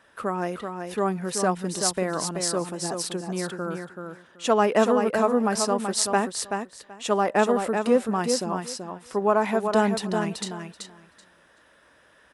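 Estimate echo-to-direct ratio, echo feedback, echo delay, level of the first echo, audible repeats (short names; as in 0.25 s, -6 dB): -6.0 dB, 16%, 0.381 s, -6.0 dB, 2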